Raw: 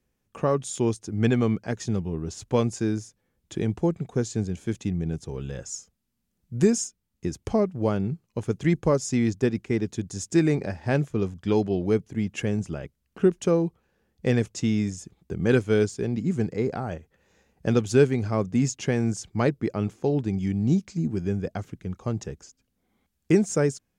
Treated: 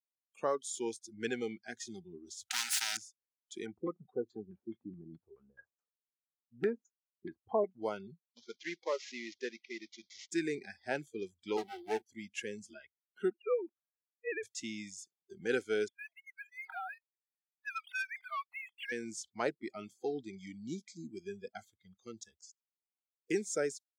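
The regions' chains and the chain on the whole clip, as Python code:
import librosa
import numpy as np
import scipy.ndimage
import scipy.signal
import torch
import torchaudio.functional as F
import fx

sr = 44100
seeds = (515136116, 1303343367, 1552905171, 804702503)

y = fx.chain(x, sr, fx.low_shelf(hz=81.0, db=-7.5),
    fx.leveller(passes=2),
    fx.spectral_comp(ratio=10.0), at=(2.5, 2.97))
y = fx.chain(y, sr, fx.peak_eq(hz=1200.0, db=7.0, octaves=0.83),
    fx.filter_lfo_lowpass(shape='saw_down', hz=4.7, low_hz=250.0, high_hz=1900.0, q=1.2), at=(3.66, 7.64))
y = fx.chain(y, sr, fx.cvsd(bps=32000),
    fx.highpass(hz=500.0, slope=6), at=(8.28, 10.31))
y = fx.chain(y, sr, fx.lower_of_two(delay_ms=8.7),
    fx.high_shelf(hz=2900.0, db=4.5), at=(11.57, 12.02))
y = fx.chain(y, sr, fx.sine_speech(),
    fx.low_shelf(hz=430.0, db=-8.5), at=(13.3, 14.43))
y = fx.chain(y, sr, fx.sine_speech(),
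    fx.steep_highpass(hz=800.0, slope=36),
    fx.leveller(passes=2), at=(15.88, 18.92))
y = fx.noise_reduce_blind(y, sr, reduce_db=27)
y = scipy.signal.sosfilt(scipy.signal.butter(2, 460.0, 'highpass', fs=sr, output='sos'), y)
y = y * 10.0 ** (-6.5 / 20.0)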